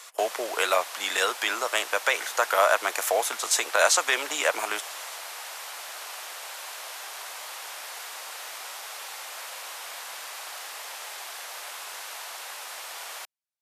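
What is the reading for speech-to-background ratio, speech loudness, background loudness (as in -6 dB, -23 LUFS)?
12.0 dB, -25.0 LUFS, -37.0 LUFS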